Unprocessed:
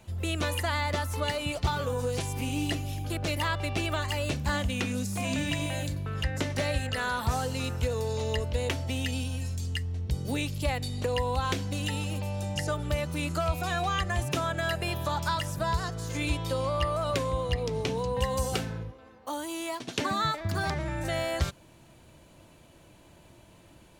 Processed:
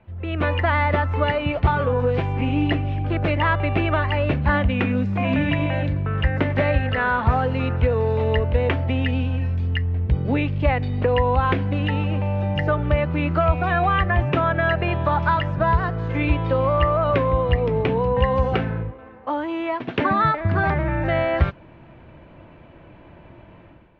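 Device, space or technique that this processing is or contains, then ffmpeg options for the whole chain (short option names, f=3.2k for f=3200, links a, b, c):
action camera in a waterproof case: -af "lowpass=f=2.4k:w=0.5412,lowpass=f=2.4k:w=1.3066,dynaudnorm=f=100:g=7:m=10dB" -ar 22050 -c:a aac -b:a 64k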